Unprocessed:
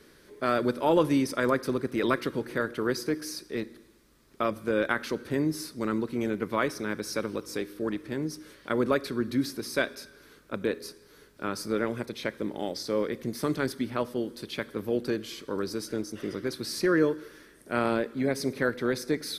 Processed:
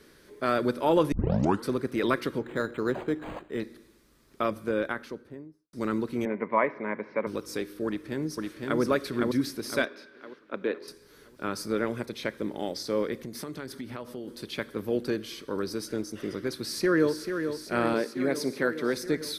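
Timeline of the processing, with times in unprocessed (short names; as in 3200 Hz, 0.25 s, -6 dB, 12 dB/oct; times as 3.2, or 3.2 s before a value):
1.12 tape start 0.56 s
2.38–3.6 decimation joined by straight lines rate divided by 8×
4.43–5.73 studio fade out
6.25–7.27 speaker cabinet 220–2100 Hz, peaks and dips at 220 Hz +3 dB, 320 Hz -5 dB, 610 Hz +6 dB, 980 Hz +10 dB, 1400 Hz -8 dB, 2100 Hz +10 dB
7.86–8.8 echo throw 0.51 s, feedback 45%, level -2.5 dB
9.85–10.88 three-band isolator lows -21 dB, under 210 Hz, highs -22 dB, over 4000 Hz
13.2–14.28 compressor 5:1, threshold -34 dBFS
15.17–15.83 notch 7200 Hz, Q 8.1
16.55–17.21 echo throw 0.44 s, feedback 75%, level -7.5 dB
17.94–18.97 HPF 170 Hz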